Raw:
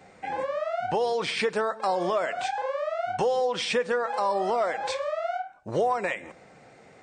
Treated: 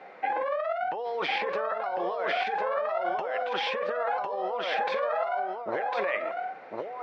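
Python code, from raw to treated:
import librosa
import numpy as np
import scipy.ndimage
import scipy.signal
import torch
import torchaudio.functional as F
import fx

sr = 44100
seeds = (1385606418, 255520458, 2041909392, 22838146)

y = scipy.signal.sosfilt(scipy.signal.butter(2, 490.0, 'highpass', fs=sr, output='sos'), x)
y = fx.high_shelf(y, sr, hz=4400.0, db=-6.5)
y = fx.over_compress(y, sr, threshold_db=-34.0, ratio=-1.0)
y = fx.air_absorb(y, sr, metres=290.0)
y = y + 10.0 ** (-3.5 / 20.0) * np.pad(y, (int(1052 * sr / 1000.0), 0))[:len(y)]
y = F.gain(torch.from_numpy(y), 4.5).numpy()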